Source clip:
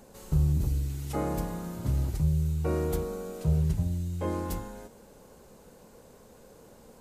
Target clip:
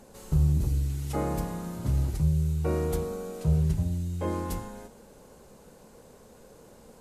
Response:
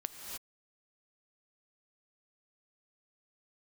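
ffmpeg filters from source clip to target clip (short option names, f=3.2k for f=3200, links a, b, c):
-filter_complex "[1:a]atrim=start_sample=2205,atrim=end_sample=3087,asetrate=24255,aresample=44100[a];[0:a][a]afir=irnorm=-1:irlink=0"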